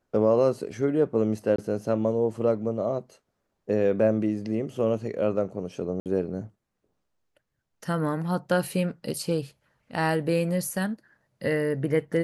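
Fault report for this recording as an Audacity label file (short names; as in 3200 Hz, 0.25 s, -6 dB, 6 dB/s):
1.560000	1.580000	gap 24 ms
6.000000	6.060000	gap 58 ms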